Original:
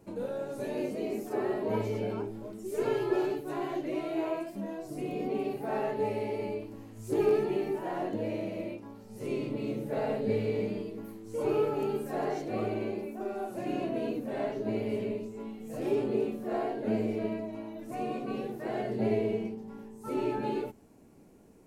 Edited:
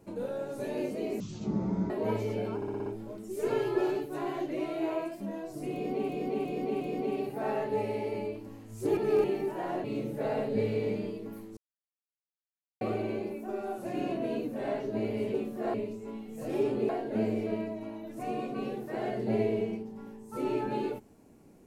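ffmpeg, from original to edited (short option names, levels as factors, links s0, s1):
-filter_complex "[0:a]asplit=19[s0][s1][s2][s3][s4][s5][s6][s7][s8][s9][s10][s11][s12][s13][s14][s15][s16][s17][s18];[s0]atrim=end=1.204[s19];[s1]atrim=start=1.2:end=1.55,asetpts=PTS-STARTPTS,asetrate=22050,aresample=44100[s20];[s2]atrim=start=1.546:end=2.272[s21];[s3]atrim=start=2.208:end=2.272[s22];[s4]atrim=start=2.208:end=2.272[s23];[s5]atrim=start=2.208:end=2.272[s24];[s6]atrim=start=2.208:end=2.272[s25];[s7]atrim=start=2.208:end=5.442[s26];[s8]atrim=start=5.078:end=5.442[s27];[s9]atrim=start=5.078:end=5.442[s28];[s10]atrim=start=5.078:end=7.242[s29];[s11]atrim=start=7.238:end=7.512,asetpts=PTS-STARTPTS,areverse[s30];[s12]atrim=start=7.508:end=8.112[s31];[s13]atrim=start=9.558:end=11.29,asetpts=PTS-STARTPTS,afade=t=out:st=1.728:d=0.004:c=hsin[s32];[s14]atrim=start=11.29:end=12.53,asetpts=PTS-STARTPTS,volume=0[s33];[s15]atrim=start=12.53:end=15.062,asetpts=PTS-STARTPTS,afade=t=in:d=0.004:c=hsin[s34];[s16]atrim=start=16.208:end=16.612[s35];[s17]atrim=start=15.058:end=16.212[s36];[s18]atrim=start=16.608[s37];[s19][s20]acrossfade=d=0.004:c1=hsin:c2=hsin[s38];[s38][s21]acrossfade=d=0.004:c1=hsin:c2=hsin[s39];[s39][s22]acrossfade=d=0.004:c1=hsin:c2=hsin[s40];[s40][s23]acrossfade=d=0.004:c1=hsin:c2=hsin[s41];[s41][s24]acrossfade=d=0.004:c1=hsin:c2=hsin[s42];[s42][s25]acrossfade=d=0.004:c1=hsin:c2=hsin[s43];[s43][s26]acrossfade=d=0.004:c1=hsin:c2=hsin[s44];[s44][s27]acrossfade=d=0.004:c1=hsin:c2=hsin[s45];[s45][s28]acrossfade=d=0.004:c1=hsin:c2=hsin[s46];[s46][s29]acrossfade=d=0.004:c1=hsin:c2=hsin[s47];[s47][s30]acrossfade=d=0.004:c1=hsin:c2=hsin[s48];[s48][s31]acrossfade=d=0.004:c1=hsin:c2=hsin[s49];[s32][s33][s34]concat=n=3:v=0:a=1[s50];[s49][s50]acrossfade=d=0.004:c1=hsin:c2=hsin[s51];[s51][s35]acrossfade=d=0.004:c1=hsin:c2=hsin[s52];[s52][s36]acrossfade=d=0.004:c1=hsin:c2=hsin[s53];[s53][s37]acrossfade=d=0.004:c1=hsin:c2=hsin"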